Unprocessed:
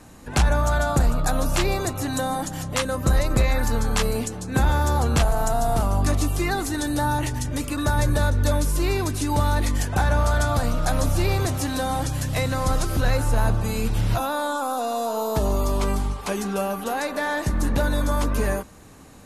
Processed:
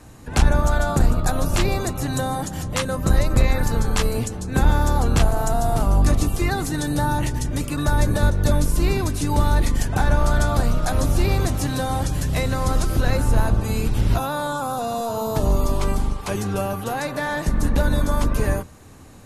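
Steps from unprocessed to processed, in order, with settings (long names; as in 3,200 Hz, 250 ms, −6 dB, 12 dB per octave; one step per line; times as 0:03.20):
sub-octave generator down 1 octave, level +1 dB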